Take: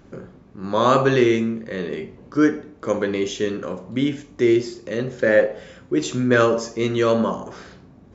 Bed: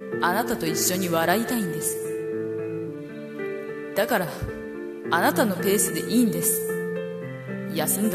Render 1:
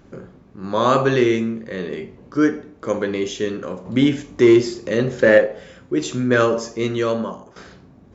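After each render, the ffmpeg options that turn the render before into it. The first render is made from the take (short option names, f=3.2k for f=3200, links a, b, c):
-filter_complex "[0:a]asettb=1/sr,asplit=3[a][b][c];[a]atrim=end=3.854[d];[b]atrim=start=3.85:end=5.38,asetpts=PTS-STARTPTS,afade=t=in:d=0.004:c=qsin,afade=t=out:st=1.526:d=0.004:c=qsin,acontrast=45[e];[c]atrim=start=5.376[f];[d][e]acrossfade=d=0.004:c1=hsin:c2=qsin[g];[g][f]acrossfade=d=0.004:c1=qsin:c2=hsin,asplit=2[h][i];[h]atrim=end=7.56,asetpts=PTS-STARTPTS,afade=t=out:st=6.86:d=0.7:silence=0.223872[j];[i]atrim=start=7.56,asetpts=PTS-STARTPTS,afade=t=in:d=0.004:c=hsin:silence=0.223872[k];[j][k]concat=n=2:v=0:a=1"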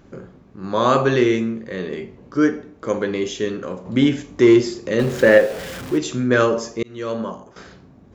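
-filter_complex "[0:a]asettb=1/sr,asplit=3[a][b][c];[a]atrim=end=4.994[d];[b]atrim=start=4.99:end=5.98,asetpts=PTS-STARTPTS,afade=t=in:d=0.004:c=qsin,afade=t=out:st=0.986:d=0.004:c=qsin,aeval=exprs='val(0)+0.5*0.0398*sgn(val(0))':c=same[e];[c]atrim=start=5.976[f];[d][e]acrossfade=d=0.004:c1=hsin:c2=qsin[g];[g][f]acrossfade=d=0.004:c1=qsin:c2=hsin,asplit=2[h][i];[h]atrim=end=6.83,asetpts=PTS-STARTPTS,afade=t=out:st=6.826:d=0.004:c=hsin[j];[i]atrim=start=6.83,asetpts=PTS-STARTPTS,afade=t=in:d=0.46[k];[j][k]concat=n=2:v=0:a=1"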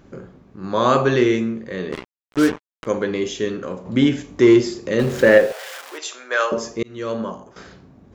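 -filter_complex "[0:a]asplit=3[a][b][c];[a]afade=t=out:st=1.91:d=0.02[d];[b]acrusher=bits=3:mix=0:aa=0.5,afade=t=in:st=1.91:d=0.02,afade=t=out:st=2.85:d=0.02[e];[c]afade=t=in:st=2.85:d=0.02[f];[d][e][f]amix=inputs=3:normalize=0,asettb=1/sr,asplit=3[g][h][i];[g]atrim=end=5.524[j];[h]atrim=start=5.52:end=6.52,asetpts=PTS-STARTPTS,afade=t=in:d=0.004:c=qsin,afade=t=out:st=0.996:d=0.004:c=qsin,highpass=f=610:w=0.5412,highpass=f=610:w=1.3066[k];[i]atrim=start=6.516[l];[j][k]acrossfade=d=0.004:c1=hsin:c2=qsin[m];[m][l]acrossfade=d=0.004:c1=qsin:c2=hsin"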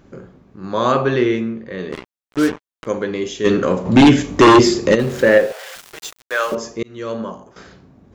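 -filter_complex "[0:a]asettb=1/sr,asplit=3[a][b][c];[a]atrim=end=0.924[d];[b]atrim=start=0.92:end=1.79,asetpts=PTS-STARTPTS,afade=t=in:d=0.004:c=qsin,afade=t=out:st=0.866:d=0.004:c=qsin,lowpass=4.3k[e];[c]atrim=start=1.786[f];[d][e]acrossfade=d=0.004:c1=hsin:c2=qsin[g];[g][f]acrossfade=d=0.004:c1=qsin:c2=hsin,asplit=3[h][i][j];[h]afade=t=out:st=3.44:d=0.02[k];[i]aeval=exprs='0.631*sin(PI/2*2.51*val(0)/0.631)':c=same,afade=t=in:st=3.44:d=0.02,afade=t=out:st=4.94:d=0.02[l];[j]afade=t=in:st=4.94:d=0.02[m];[k][l][m]amix=inputs=3:normalize=0,asettb=1/sr,asplit=3[n][o][p];[n]atrim=end=5.754[q];[o]atrim=start=5.75:end=6.55,asetpts=PTS-STARTPTS,afade=t=in:d=0.004:c=qsin,afade=t=out:st=0.796:d=0.004:c=qsin,aeval=exprs='val(0)*gte(abs(val(0)),0.0316)':c=same[r];[p]atrim=start=6.546[s];[q][r]acrossfade=d=0.004:c1=hsin:c2=qsin[t];[t][s]acrossfade=d=0.004:c1=qsin:c2=hsin"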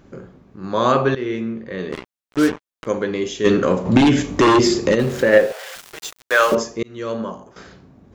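-filter_complex "[0:a]asettb=1/sr,asplit=3[a][b][c];[a]atrim=end=3.974[d];[b]atrim=start=3.97:end=5.33,asetpts=PTS-STARTPTS,afade=t=in:d=0.004:c=qsin,afade=t=out:st=1.356:d=0.004:c=qsin,acompressor=threshold=-11dB:ratio=4:attack=3.2:release=140:knee=1:detection=peak[e];[c]atrim=start=5.326[f];[d][e]acrossfade=d=0.004:c1=hsin:c2=qsin[g];[g][f]acrossfade=d=0.004:c1=qsin:c2=hsin,asplit=3[h][i][j];[h]afade=t=out:st=6.21:d=0.02[k];[i]acontrast=36,afade=t=in:st=6.21:d=0.02,afade=t=out:st=6.62:d=0.02[l];[j]afade=t=in:st=6.62:d=0.02[m];[k][l][m]amix=inputs=3:normalize=0,asplit=2[n][o];[n]atrim=end=1.15,asetpts=PTS-STARTPTS,afade=t=out:st=1.146:d=0.004:c=hsin:silence=0.188365[p];[o]atrim=start=1.15,asetpts=PTS-STARTPTS,afade=t=in:d=0.43:silence=0.188365[q];[p][q]concat=n=2:v=0:a=1"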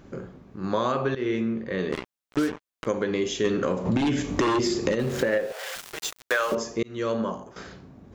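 -af "acompressor=threshold=-21dB:ratio=10"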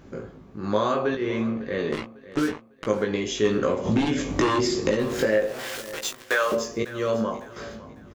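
-filter_complex "[0:a]asplit=2[a][b];[b]adelay=19,volume=-4dB[c];[a][c]amix=inputs=2:normalize=0,aecho=1:1:551|1102|1653:0.141|0.0494|0.0173"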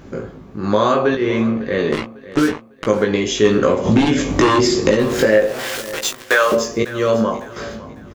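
-af "volume=8.5dB,alimiter=limit=-2dB:level=0:latency=1"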